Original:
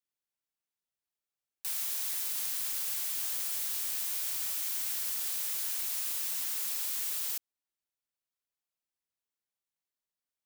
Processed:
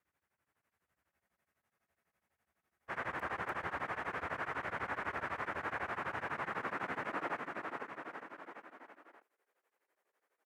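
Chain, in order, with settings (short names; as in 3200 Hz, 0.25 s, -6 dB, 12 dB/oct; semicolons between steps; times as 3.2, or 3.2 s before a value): treble ducked by the level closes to 1300 Hz; resonant high shelf 2700 Hz -14 dB, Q 1.5; high-pass sweep 77 Hz -> 430 Hz, 5.77–7.54; on a send: bouncing-ball echo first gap 0.45 s, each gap 0.9×, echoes 5; on the sum: spectral freeze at 1.12, 1.77 s; beating tremolo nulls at 12 Hz; gain +16.5 dB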